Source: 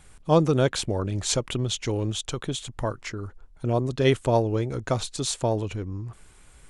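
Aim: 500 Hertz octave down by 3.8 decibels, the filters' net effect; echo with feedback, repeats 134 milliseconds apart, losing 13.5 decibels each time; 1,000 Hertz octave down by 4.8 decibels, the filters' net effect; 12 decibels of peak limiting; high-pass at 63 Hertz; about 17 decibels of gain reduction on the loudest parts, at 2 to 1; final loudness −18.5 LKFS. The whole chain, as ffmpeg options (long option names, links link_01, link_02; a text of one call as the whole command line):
ffmpeg -i in.wav -af "highpass=63,equalizer=frequency=500:width_type=o:gain=-3.5,equalizer=frequency=1000:width_type=o:gain=-5,acompressor=threshold=-49dB:ratio=2,alimiter=level_in=11dB:limit=-24dB:level=0:latency=1,volume=-11dB,aecho=1:1:134|268:0.211|0.0444,volume=26dB" out.wav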